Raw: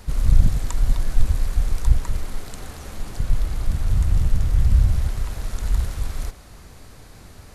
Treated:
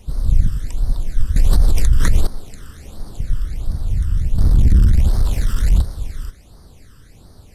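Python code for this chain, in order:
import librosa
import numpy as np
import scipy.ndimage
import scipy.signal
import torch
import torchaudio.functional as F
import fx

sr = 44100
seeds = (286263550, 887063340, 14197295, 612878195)

y = fx.leveller(x, sr, passes=3, at=(4.38, 5.82))
y = fx.phaser_stages(y, sr, stages=12, low_hz=700.0, high_hz=2600.0, hz=1.4, feedback_pct=25)
y = fx.env_flatten(y, sr, amount_pct=100, at=(1.36, 2.27))
y = F.gain(torch.from_numpy(y), -1.0).numpy()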